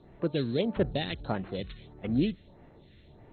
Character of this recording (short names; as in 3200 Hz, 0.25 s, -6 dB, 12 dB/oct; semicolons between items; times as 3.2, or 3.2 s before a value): a buzz of ramps at a fixed pitch in blocks of 8 samples; phasing stages 2, 1.6 Hz, lowest notch 790–4200 Hz; MP2